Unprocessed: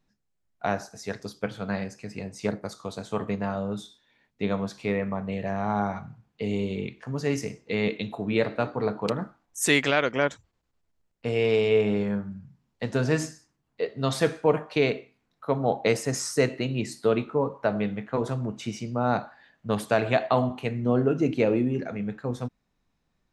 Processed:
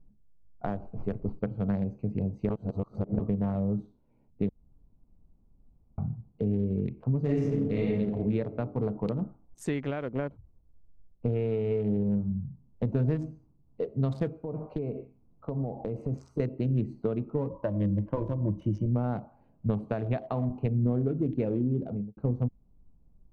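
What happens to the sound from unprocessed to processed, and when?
0:00.67–0:01.39: windowed peak hold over 5 samples
0:02.49–0:03.19: reverse
0:04.49–0:05.98: fill with room tone
0:07.21–0:07.86: thrown reverb, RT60 1.4 s, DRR −8 dB
0:09.69–0:12.85: high-frequency loss of the air 150 metres
0:14.38–0:16.40: downward compressor 4 to 1, threshold −34 dBFS
0:17.50–0:18.86: EQ curve with evenly spaced ripples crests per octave 1.2, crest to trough 15 dB
0:21.75–0:22.17: fade out and dull
whole clip: adaptive Wiener filter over 25 samples; downward compressor 4 to 1, threshold −33 dBFS; spectral tilt −4 dB per octave; level −1 dB

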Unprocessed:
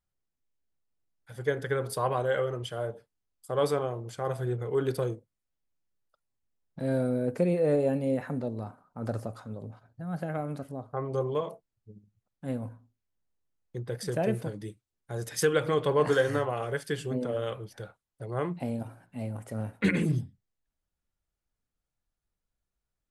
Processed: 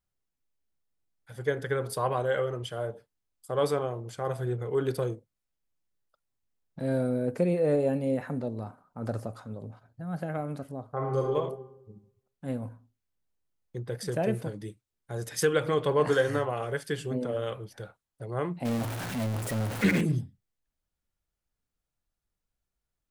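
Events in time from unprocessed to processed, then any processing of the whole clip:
0:10.91–0:11.33: thrown reverb, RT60 0.97 s, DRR −0.5 dB
0:18.65–0:20.01: converter with a step at zero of −29.5 dBFS

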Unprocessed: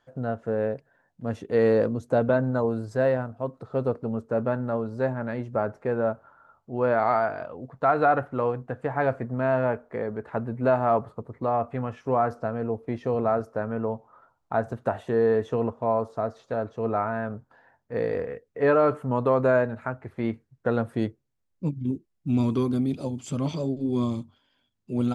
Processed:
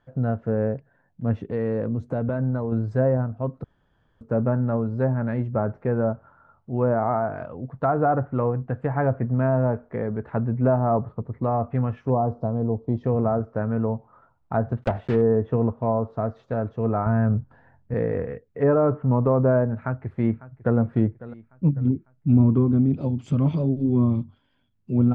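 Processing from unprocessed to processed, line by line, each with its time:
0:01.44–0:02.72: downward compressor 2 to 1, threshold −30 dBFS
0:03.64–0:04.21: fill with room tone
0:12.10–0:13.04: flat-topped bell 1,900 Hz −15.5 dB 1.3 octaves
0:14.82–0:15.22: one scale factor per block 3 bits
0:17.06–0:17.94: low-shelf EQ 200 Hz +10.5 dB
0:19.77–0:20.78: delay throw 550 ms, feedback 50%, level −17.5 dB
whole clip: treble cut that deepens with the level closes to 1,100 Hz, closed at −19.5 dBFS; bass and treble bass +10 dB, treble −13 dB

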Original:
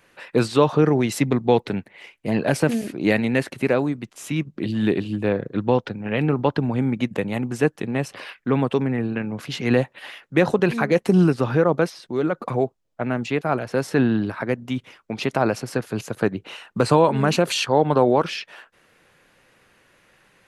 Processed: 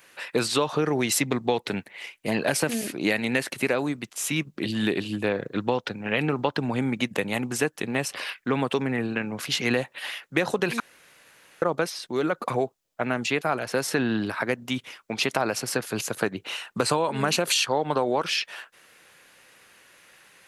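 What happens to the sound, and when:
0:10.80–0:11.62: fill with room tone
whole clip: spectral tilt +2.5 dB per octave; downward compressor, threshold −21 dBFS; level +1.5 dB

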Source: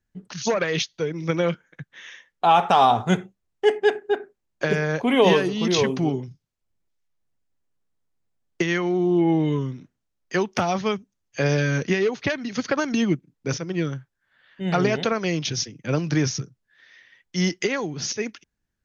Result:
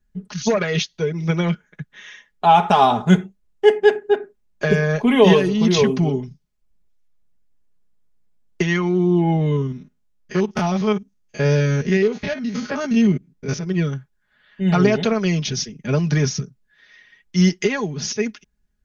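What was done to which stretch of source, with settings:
0:09.36–0:13.67: spectrum averaged block by block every 50 ms
whole clip: low-shelf EQ 150 Hz +11 dB; comb filter 4.8 ms, depth 69%

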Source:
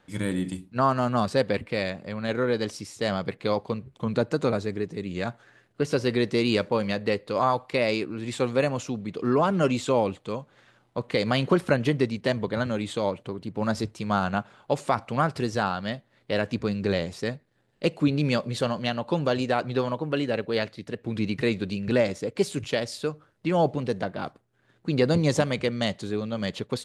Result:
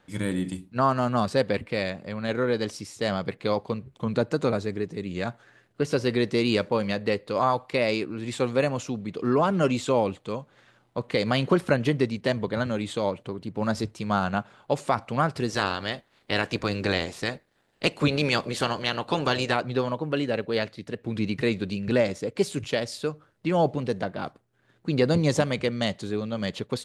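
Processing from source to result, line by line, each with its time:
0:15.49–0:19.55: ceiling on every frequency bin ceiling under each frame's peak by 15 dB

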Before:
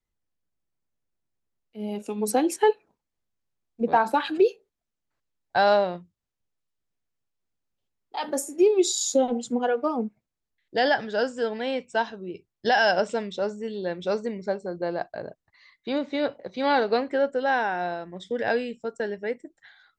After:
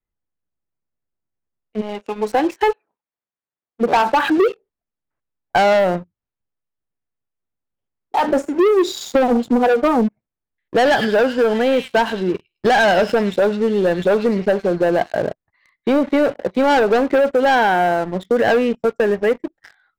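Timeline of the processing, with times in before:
0:01.80–0:04.21: high-pass filter 1,400 Hz → 430 Hz 6 dB per octave
0:10.77–0:15.23: echo through a band-pass that steps 103 ms, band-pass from 3,500 Hz, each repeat 0.7 octaves, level −1 dB
whole clip: low-pass filter 2,100 Hz 12 dB per octave; leveller curve on the samples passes 3; downward compressor, threshold −17 dBFS; level +5 dB

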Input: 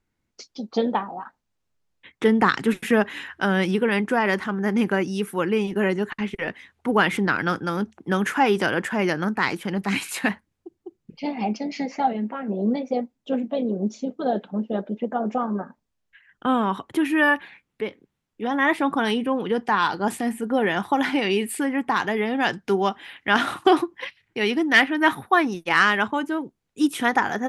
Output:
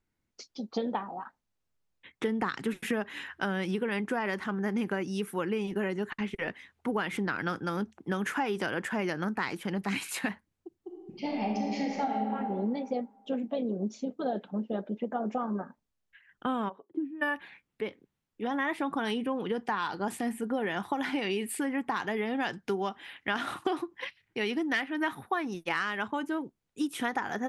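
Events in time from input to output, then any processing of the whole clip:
0:10.78–0:12.33: thrown reverb, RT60 1.6 s, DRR −1.5 dB
0:16.68–0:17.21: resonant band-pass 620 Hz → 170 Hz, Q 5.4
whole clip: downward compressor 6 to 1, threshold −22 dBFS; level −5 dB

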